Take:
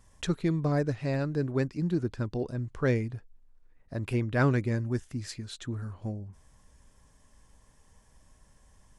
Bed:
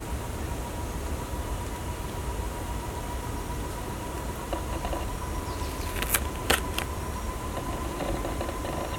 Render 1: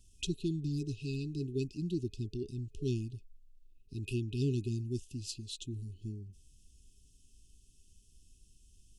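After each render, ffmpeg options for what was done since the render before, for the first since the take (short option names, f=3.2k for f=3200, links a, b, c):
-af "afftfilt=real='re*(1-between(b*sr/4096,430,2500))':imag='im*(1-between(b*sr/4096,430,2500))':win_size=4096:overlap=0.75,equalizer=f=200:t=o:w=2.6:g=-7.5"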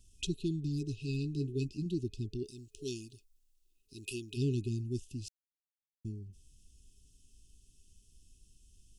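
-filter_complex "[0:a]asettb=1/sr,asplit=3[a][b][c];[a]atrim=end=1.074[d];[b]atrim=start=1.07:end=1.86,asetpts=PTS-STARTPTS,afade=t=in:d=0.004:c=qsin,afade=t=out:st=0.786:d=0.004:c=qsin,asplit=2[e][f];[f]adelay=14,volume=-8dB[g];[e][g]amix=inputs=2:normalize=0,atrim=end_sample=34839[h];[c]atrim=start=1.856[i];[d][h]acrossfade=d=0.004:c1=hsin:c2=qsin[j];[j][i]acrossfade=d=0.004:c1=qsin:c2=hsin,asplit=3[k][l][m];[k]afade=t=out:st=2.43:d=0.02[n];[l]bass=f=250:g=-14,treble=f=4k:g=9,afade=t=in:st=2.43:d=0.02,afade=t=out:st=4.36:d=0.02[o];[m]afade=t=in:st=4.36:d=0.02[p];[n][o][p]amix=inputs=3:normalize=0,asettb=1/sr,asplit=3[q][r][s];[q]atrim=end=5.284[t];[r]atrim=start=5.28:end=6.05,asetpts=PTS-STARTPTS,afade=t=in:d=0.004:c=qsin,afade=t=out:st=0.766:d=0.004:c=qsin,acrusher=bits=2:mix=0:aa=0.5[u];[s]atrim=start=6.046[v];[t][u]acrossfade=d=0.004:c1=hsin:c2=qsin[w];[w][v]acrossfade=d=0.004:c1=qsin:c2=hsin"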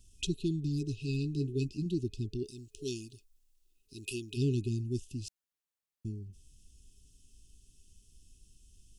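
-af "volume=2dB"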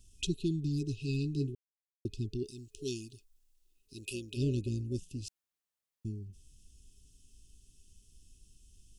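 -filter_complex "[0:a]asettb=1/sr,asplit=3[a][b][c];[a]atrim=end=3.984[d];[b]atrim=start=3.98:end=5.23,asetpts=PTS-STARTPTS,afade=t=in:d=0.004:c=qsin,afade=t=out:st=1.246:d=0.004:c=qsin,tremolo=f=170:d=0.333[e];[c]atrim=start=5.226[f];[d][e]acrossfade=d=0.004:c1=hsin:c2=qsin[g];[g][f]acrossfade=d=0.004:c1=qsin:c2=hsin,asplit=3[h][i][j];[h]atrim=end=1.55,asetpts=PTS-STARTPTS,afade=t=out:st=1.546:d=0.004:c=hsin[k];[i]atrim=start=1.55:end=2.05,asetpts=PTS-STARTPTS,volume=0[l];[j]atrim=start=2.05,asetpts=PTS-STARTPTS,afade=t=in:d=0.004:c=hsin[m];[k][l][m]concat=n=3:v=0:a=1"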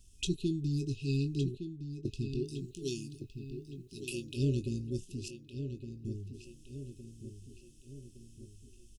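-filter_complex "[0:a]asplit=2[a][b];[b]adelay=22,volume=-10.5dB[c];[a][c]amix=inputs=2:normalize=0,asplit=2[d][e];[e]adelay=1163,lowpass=f=3.5k:p=1,volume=-9dB,asplit=2[f][g];[g]adelay=1163,lowpass=f=3.5k:p=1,volume=0.53,asplit=2[h][i];[i]adelay=1163,lowpass=f=3.5k:p=1,volume=0.53,asplit=2[j][k];[k]adelay=1163,lowpass=f=3.5k:p=1,volume=0.53,asplit=2[l][m];[m]adelay=1163,lowpass=f=3.5k:p=1,volume=0.53,asplit=2[n][o];[o]adelay=1163,lowpass=f=3.5k:p=1,volume=0.53[p];[f][h][j][l][n][p]amix=inputs=6:normalize=0[q];[d][q]amix=inputs=2:normalize=0"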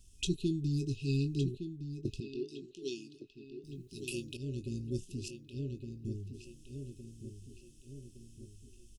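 -filter_complex "[0:a]asettb=1/sr,asplit=3[a][b][c];[a]atrim=end=2.204[d];[b]atrim=start=2.2:end=3.64,asetpts=PTS-STARTPTS,afade=t=in:d=0.004:c=qsin,afade=t=out:st=1.436:d=0.004:c=qsin,acrossover=split=250 5500:gain=0.0794 1 0.126[e][f][g];[e][f][g]amix=inputs=3:normalize=0[h];[c]atrim=start=3.636[i];[d][h]acrossfade=d=0.004:c1=hsin:c2=qsin[j];[j][i]acrossfade=d=0.004:c1=qsin:c2=hsin,asplit=2[k][l];[k]atrim=end=4.37,asetpts=PTS-STARTPTS,afade=t=out:st=4.366:d=0.004:c=hsin:silence=0.16788[m];[l]atrim=start=4.37,asetpts=PTS-STARTPTS,afade=t=in:d=0.55:silence=0.16788[n];[m][n]concat=n=2:v=0:a=1"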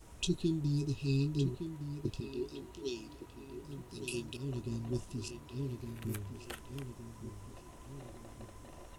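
-filter_complex "[1:a]volume=-22.5dB[a];[0:a][a]amix=inputs=2:normalize=0"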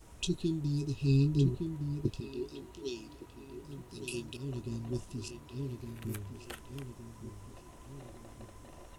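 -filter_complex "[0:a]asettb=1/sr,asplit=3[a][b][c];[a]atrim=end=1.014[d];[b]atrim=start=1.01:end=2.08,asetpts=PTS-STARTPTS,afade=t=in:d=0.004:c=qsin,afade=t=out:st=1.066:d=0.004:c=qsin,lowshelf=f=390:g=6.5[e];[c]atrim=start=2.076[f];[d][e]acrossfade=d=0.004:c1=hsin:c2=qsin[g];[g][f]acrossfade=d=0.004:c1=qsin:c2=hsin"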